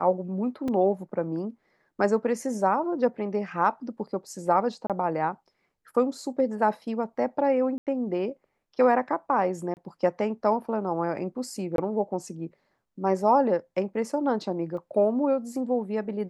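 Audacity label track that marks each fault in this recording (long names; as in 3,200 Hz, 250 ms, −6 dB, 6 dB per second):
0.680000	0.680000	drop-out 3.4 ms
4.870000	4.900000	drop-out 27 ms
7.780000	7.870000	drop-out 88 ms
9.740000	9.770000	drop-out 29 ms
11.760000	11.780000	drop-out 22 ms
14.770000	14.770000	drop-out 2.8 ms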